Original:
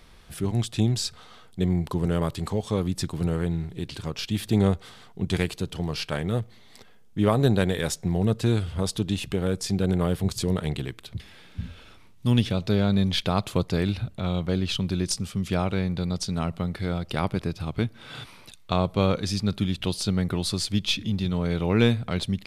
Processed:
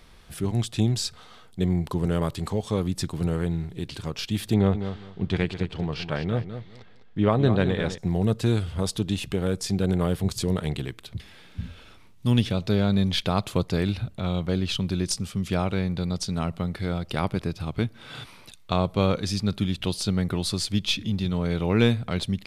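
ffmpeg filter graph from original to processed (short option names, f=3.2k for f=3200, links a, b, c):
-filter_complex "[0:a]asettb=1/sr,asplit=3[a][b][c];[a]atrim=end=4.544[d];[b]atrim=start=4.54:end=7.98,asetpts=PTS-STARTPTS,afade=t=in:d=0.004:c=qsin,afade=t=out:st=3.436:d=0.004:c=qsin,lowpass=3.6k,aecho=1:1:204|408|612:0.316|0.0632|0.0126,atrim=end_sample=151704[e];[c]atrim=start=7.976[f];[d][e]acrossfade=d=0.004:c1=hsin:c2=qsin[g];[g][f]acrossfade=d=0.004:c1=qsin:c2=hsin"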